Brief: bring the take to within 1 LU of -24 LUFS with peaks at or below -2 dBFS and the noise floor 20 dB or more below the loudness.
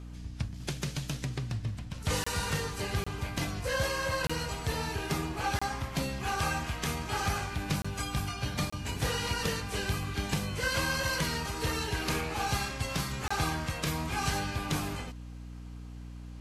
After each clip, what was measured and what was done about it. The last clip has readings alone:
dropouts 7; longest dropout 25 ms; hum 60 Hz; highest harmonic 300 Hz; hum level -41 dBFS; loudness -32.5 LUFS; peak level -15.0 dBFS; loudness target -24.0 LUFS
-> interpolate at 2.24/3.04/4.27/5.59/7.82/8.70/13.28 s, 25 ms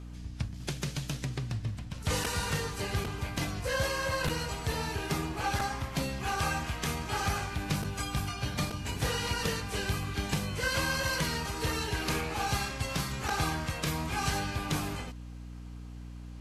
dropouts 0; hum 60 Hz; highest harmonic 300 Hz; hum level -41 dBFS
-> hum notches 60/120/180/240/300 Hz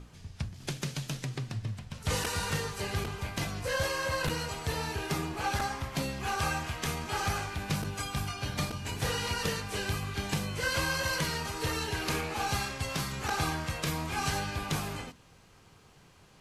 hum not found; loudness -33.0 LUFS; peak level -15.0 dBFS; loudness target -24.0 LUFS
-> trim +9 dB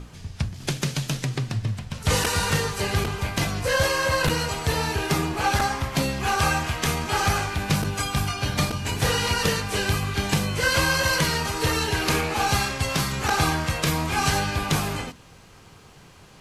loudness -24.0 LUFS; peak level -6.0 dBFS; noise floor -49 dBFS

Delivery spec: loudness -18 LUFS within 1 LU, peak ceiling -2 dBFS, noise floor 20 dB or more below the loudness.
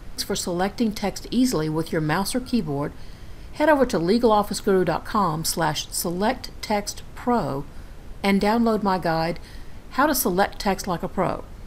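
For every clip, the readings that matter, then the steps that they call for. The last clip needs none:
noise floor -41 dBFS; noise floor target -43 dBFS; loudness -23.0 LUFS; peak level -5.5 dBFS; loudness target -18.0 LUFS
-> noise print and reduce 6 dB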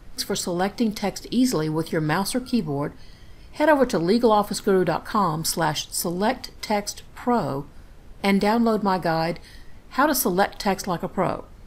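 noise floor -46 dBFS; loudness -23.0 LUFS; peak level -5.5 dBFS; loudness target -18.0 LUFS
-> trim +5 dB; peak limiter -2 dBFS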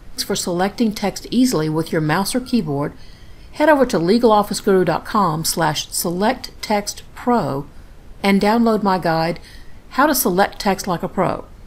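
loudness -18.5 LUFS; peak level -2.0 dBFS; noise floor -41 dBFS

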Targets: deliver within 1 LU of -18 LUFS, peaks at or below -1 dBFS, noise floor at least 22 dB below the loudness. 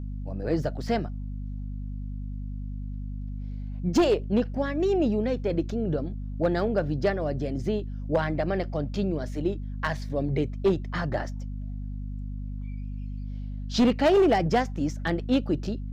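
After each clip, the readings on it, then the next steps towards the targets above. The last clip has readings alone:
clipped samples 0.7%; clipping level -15.5 dBFS; hum 50 Hz; highest harmonic 250 Hz; hum level -31 dBFS; loudness -28.0 LUFS; peak level -15.5 dBFS; loudness target -18.0 LUFS
-> clip repair -15.5 dBFS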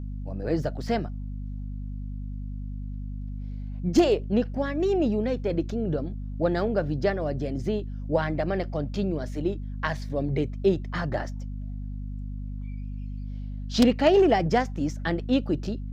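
clipped samples 0.0%; hum 50 Hz; highest harmonic 250 Hz; hum level -31 dBFS
-> hum notches 50/100/150/200/250 Hz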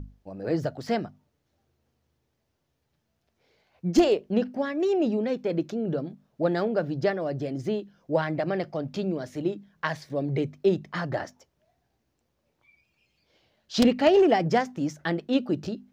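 hum not found; loudness -27.0 LUFS; peak level -7.0 dBFS; loudness target -18.0 LUFS
-> trim +9 dB; peak limiter -1 dBFS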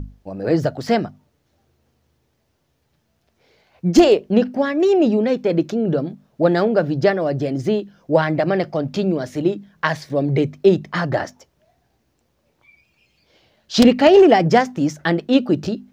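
loudness -18.0 LUFS; peak level -1.0 dBFS; noise floor -67 dBFS

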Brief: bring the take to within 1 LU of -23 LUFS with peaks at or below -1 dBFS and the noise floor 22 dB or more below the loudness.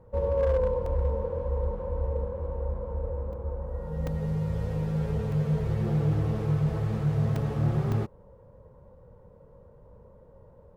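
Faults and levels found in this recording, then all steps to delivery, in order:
clipped samples 0.4%; clipping level -18.5 dBFS; dropouts 6; longest dropout 3.2 ms; loudness -29.0 LUFS; peak level -18.5 dBFS; loudness target -23.0 LUFS
-> clip repair -18.5 dBFS; interpolate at 0.86/3.33/4.07/5.32/7.36/7.92 s, 3.2 ms; trim +6 dB

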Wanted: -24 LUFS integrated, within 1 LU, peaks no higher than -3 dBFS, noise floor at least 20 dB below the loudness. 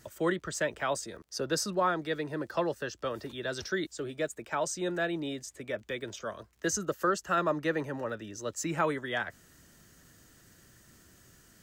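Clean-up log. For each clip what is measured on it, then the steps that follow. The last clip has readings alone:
tick rate 36 per s; loudness -33.0 LUFS; peak level -17.0 dBFS; loudness target -24.0 LUFS
-> de-click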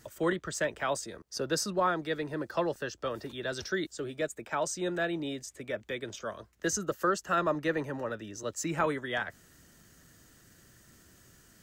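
tick rate 0.086 per s; loudness -33.0 LUFS; peak level -17.0 dBFS; loudness target -24.0 LUFS
-> trim +9 dB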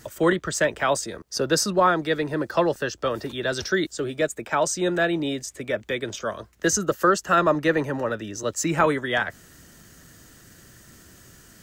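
loudness -24.0 LUFS; peak level -8.0 dBFS; noise floor -51 dBFS

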